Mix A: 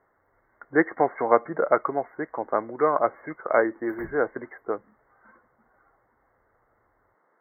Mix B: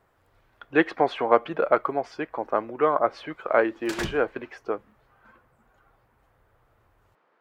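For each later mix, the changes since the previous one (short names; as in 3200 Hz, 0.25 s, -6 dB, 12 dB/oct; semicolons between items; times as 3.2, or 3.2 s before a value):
background +9.5 dB; master: remove brick-wall FIR band-stop 2200–12000 Hz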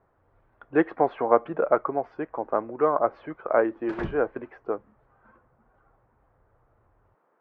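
master: add LPF 1300 Hz 12 dB/oct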